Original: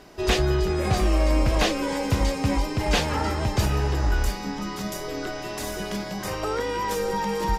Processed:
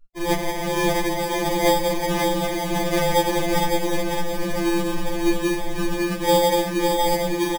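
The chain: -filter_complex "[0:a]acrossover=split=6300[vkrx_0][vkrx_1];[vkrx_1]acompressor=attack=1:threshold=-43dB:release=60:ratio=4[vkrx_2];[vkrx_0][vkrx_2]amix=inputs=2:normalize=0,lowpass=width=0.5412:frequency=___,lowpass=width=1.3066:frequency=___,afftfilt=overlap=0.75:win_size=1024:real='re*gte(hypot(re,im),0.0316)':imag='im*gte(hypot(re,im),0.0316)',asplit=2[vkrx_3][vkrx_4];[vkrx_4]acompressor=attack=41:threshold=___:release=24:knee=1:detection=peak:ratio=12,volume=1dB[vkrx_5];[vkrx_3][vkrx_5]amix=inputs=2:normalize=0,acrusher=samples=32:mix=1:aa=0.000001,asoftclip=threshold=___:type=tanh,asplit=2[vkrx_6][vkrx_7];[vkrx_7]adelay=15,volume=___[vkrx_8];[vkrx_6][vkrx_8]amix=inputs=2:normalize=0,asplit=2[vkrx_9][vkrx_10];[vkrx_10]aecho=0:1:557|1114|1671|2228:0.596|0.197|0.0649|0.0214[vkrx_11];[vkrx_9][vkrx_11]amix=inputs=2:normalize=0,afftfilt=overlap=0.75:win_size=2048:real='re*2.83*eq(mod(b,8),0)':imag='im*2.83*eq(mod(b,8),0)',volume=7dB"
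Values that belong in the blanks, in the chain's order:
8000, 8000, -32dB, -21dB, -2.5dB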